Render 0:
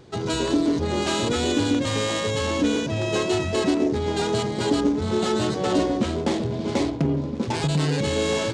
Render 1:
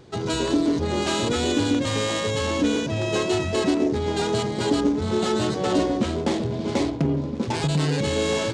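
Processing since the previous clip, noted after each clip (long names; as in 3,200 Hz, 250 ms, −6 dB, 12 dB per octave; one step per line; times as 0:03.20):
no processing that can be heard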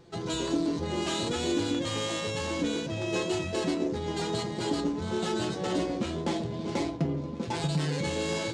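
tuned comb filter 170 Hz, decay 0.17 s, harmonics all, mix 80%
level +1.5 dB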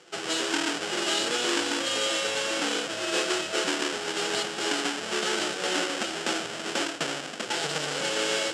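each half-wave held at its own peak
loudspeaker in its box 460–9,300 Hz, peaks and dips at 1,000 Hz −7 dB, 1,500 Hz +5 dB, 3,000 Hz +9 dB, 5,200 Hz +6 dB, 7,500 Hz +7 dB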